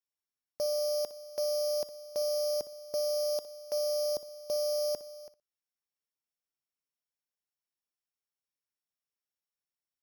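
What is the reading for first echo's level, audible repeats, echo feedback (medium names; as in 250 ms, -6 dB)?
-15.0 dB, 2, 18%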